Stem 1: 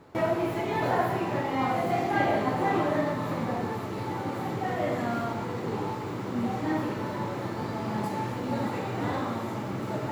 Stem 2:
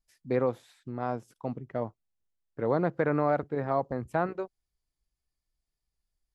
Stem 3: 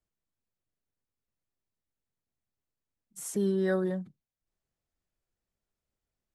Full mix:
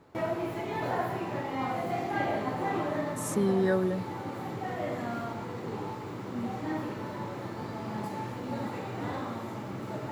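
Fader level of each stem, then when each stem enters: -5.0 dB, off, +1.5 dB; 0.00 s, off, 0.00 s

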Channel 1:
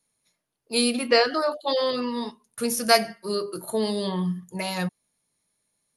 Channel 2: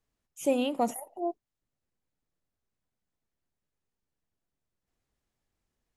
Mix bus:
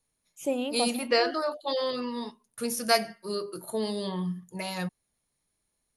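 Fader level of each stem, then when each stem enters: -5.0, -2.5 dB; 0.00, 0.00 s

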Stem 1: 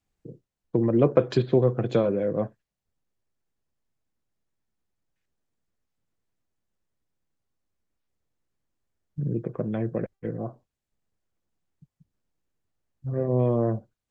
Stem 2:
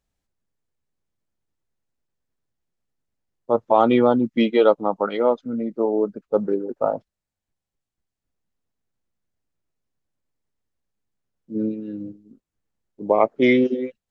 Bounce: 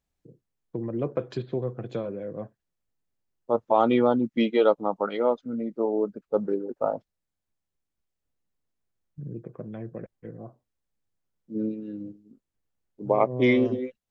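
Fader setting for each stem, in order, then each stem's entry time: -9.0, -4.5 dB; 0.00, 0.00 s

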